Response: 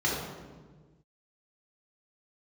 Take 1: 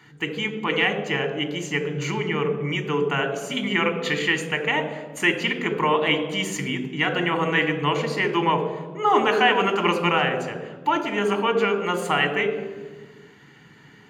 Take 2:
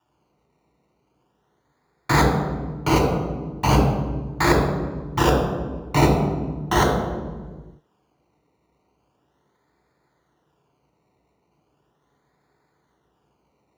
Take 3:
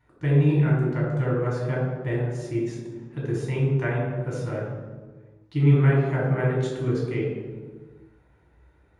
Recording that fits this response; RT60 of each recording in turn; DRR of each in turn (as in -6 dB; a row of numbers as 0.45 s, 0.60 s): 3; 1.4 s, 1.4 s, 1.4 s; 6.5 dB, 0.0 dB, -5.5 dB